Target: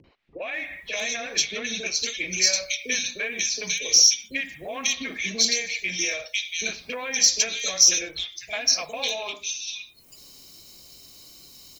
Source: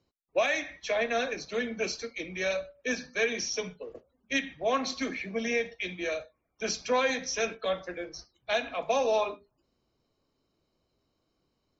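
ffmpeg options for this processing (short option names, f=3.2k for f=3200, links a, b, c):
-filter_complex "[0:a]acompressor=threshold=-37dB:ratio=6,asetnsamples=n=441:p=0,asendcmd='1.45 highshelf g 11.5',highshelf=f=6k:g=5,acrossover=split=460|2400[a][b][c];[b]adelay=40[d];[c]adelay=540[e];[a][d][e]amix=inputs=3:normalize=0,acompressor=mode=upward:threshold=-53dB:ratio=2.5,aexciter=amount=2.4:drive=8.8:freq=2k,volume=6.5dB"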